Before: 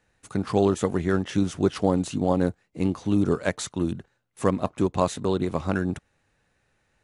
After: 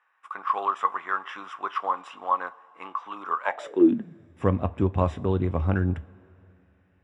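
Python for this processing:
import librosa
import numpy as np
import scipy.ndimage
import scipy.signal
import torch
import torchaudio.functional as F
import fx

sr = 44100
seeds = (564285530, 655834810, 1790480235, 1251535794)

y = scipy.signal.savgol_filter(x, 25, 4, mode='constant')
y = fx.rev_double_slope(y, sr, seeds[0], early_s=0.22, late_s=3.1, knee_db=-21, drr_db=12.0)
y = fx.filter_sweep_highpass(y, sr, from_hz=1100.0, to_hz=76.0, start_s=3.41, end_s=4.38, q=7.1)
y = y * 10.0 ** (-2.5 / 20.0)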